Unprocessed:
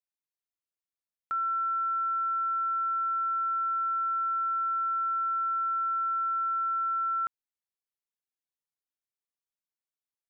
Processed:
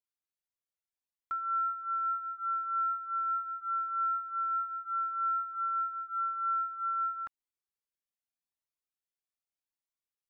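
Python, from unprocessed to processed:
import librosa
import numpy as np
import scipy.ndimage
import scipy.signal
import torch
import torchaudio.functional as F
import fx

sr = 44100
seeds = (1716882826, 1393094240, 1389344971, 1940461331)

y = fx.bass_treble(x, sr, bass_db=8, treble_db=-6, at=(5.55, 7.25))
y = fx.comb_cascade(y, sr, direction='rising', hz=0.81)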